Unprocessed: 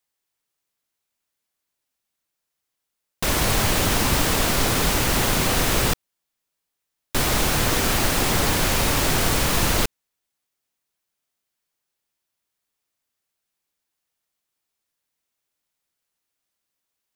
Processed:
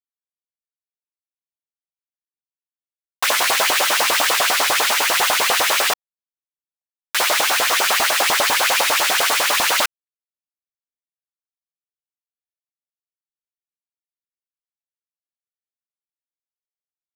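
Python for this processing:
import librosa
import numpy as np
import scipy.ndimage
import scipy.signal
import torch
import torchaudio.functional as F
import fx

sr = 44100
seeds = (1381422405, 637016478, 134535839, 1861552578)

y = fx.backlash(x, sr, play_db=-33.0)
y = fx.filter_lfo_highpass(y, sr, shape='saw_up', hz=10.0, low_hz=520.0, high_hz=3500.0, q=2.2)
y = y * 10.0 ** (4.5 / 20.0)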